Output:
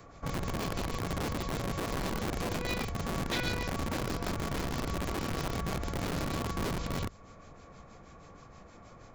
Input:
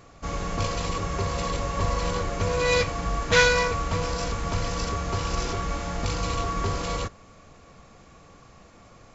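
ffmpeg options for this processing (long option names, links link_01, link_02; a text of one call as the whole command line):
ffmpeg -i in.wav -filter_complex "[0:a]acrossover=split=4000[link_01][link_02];[link_02]acompressor=threshold=-49dB:ratio=4:attack=1:release=60[link_03];[link_01][link_03]amix=inputs=2:normalize=0,bandreject=frequency=2800:width=15,acrossover=split=140|3000[link_04][link_05][link_06];[link_05]acompressor=threshold=-40dB:ratio=5[link_07];[link_04][link_07][link_06]amix=inputs=3:normalize=0,acrossover=split=480|2100[link_08][link_09][link_10];[link_08]aeval=exprs='(mod(25.1*val(0)+1,2)-1)/25.1':channel_layout=same[link_11];[link_10]tremolo=f=6.3:d=0.85[link_12];[link_11][link_09][link_12]amix=inputs=3:normalize=0,volume=-1dB" out.wav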